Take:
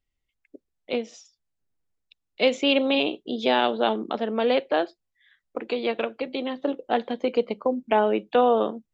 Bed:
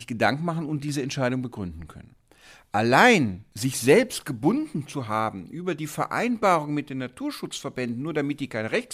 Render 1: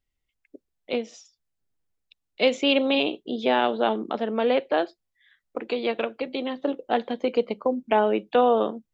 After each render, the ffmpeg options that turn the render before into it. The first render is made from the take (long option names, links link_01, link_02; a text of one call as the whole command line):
ffmpeg -i in.wav -filter_complex "[0:a]asettb=1/sr,asplit=3[link_01][link_02][link_03];[link_01]atrim=end=3.114[link_04];[link_02]atrim=start=3.11:end=4.78,asetpts=PTS-STARTPTS,afade=type=in:duration=0.004:curve=qsin,afade=type=out:start_time=1.666:duration=0.004:curve=qsin,acrossover=split=3300[link_05][link_06];[link_06]acompressor=threshold=-45dB:ratio=4:attack=1:release=60[link_07];[link_05][link_07]amix=inputs=2:normalize=0[link_08];[link_03]atrim=start=4.776[link_09];[link_04][link_08]acrossfade=duration=0.004:curve1=hsin:curve2=qsin[link_10];[link_10][link_09]acrossfade=duration=0.004:curve1=qsin:curve2=hsin" out.wav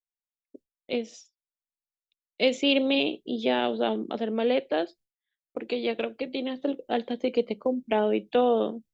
ffmpeg -i in.wav -af "agate=range=-33dB:threshold=-45dB:ratio=3:detection=peak,equalizer=frequency=1100:width_type=o:width=1.4:gain=-9" out.wav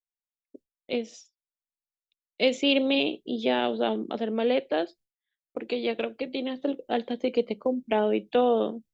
ffmpeg -i in.wav -af anull out.wav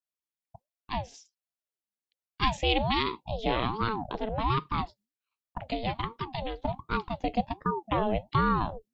ffmpeg -i in.wav -af "aeval=exprs='val(0)*sin(2*PI*450*n/s+450*0.55/1.3*sin(2*PI*1.3*n/s))':channel_layout=same" out.wav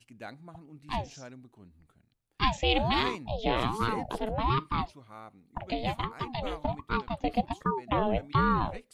ffmpeg -i in.wav -i bed.wav -filter_complex "[1:a]volume=-21.5dB[link_01];[0:a][link_01]amix=inputs=2:normalize=0" out.wav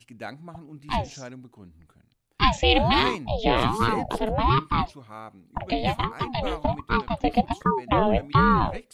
ffmpeg -i in.wav -af "volume=6.5dB" out.wav